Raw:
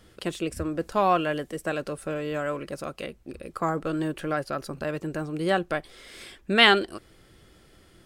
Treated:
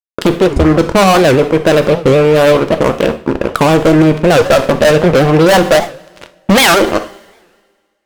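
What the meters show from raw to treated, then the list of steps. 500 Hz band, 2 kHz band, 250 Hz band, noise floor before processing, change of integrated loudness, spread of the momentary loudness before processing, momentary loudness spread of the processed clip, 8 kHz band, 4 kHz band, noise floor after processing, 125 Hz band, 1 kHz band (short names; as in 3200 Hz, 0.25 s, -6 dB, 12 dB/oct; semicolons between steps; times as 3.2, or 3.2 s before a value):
+20.0 dB, +12.0 dB, +19.0 dB, -57 dBFS, +16.5 dB, 18 LU, 7 LU, +23.0 dB, +10.5 dB, -61 dBFS, +21.0 dB, +14.0 dB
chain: Wiener smoothing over 25 samples; spectral gain 4.38–7.14, 470–4100 Hz +8 dB; dynamic EQ 290 Hz, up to -5 dB, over -42 dBFS, Q 3.3; fuzz box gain 32 dB, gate -41 dBFS; two-slope reverb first 0.39 s, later 1.7 s, from -25 dB, DRR 9 dB; maximiser +15.5 dB; record warp 78 rpm, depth 250 cents; gain -1 dB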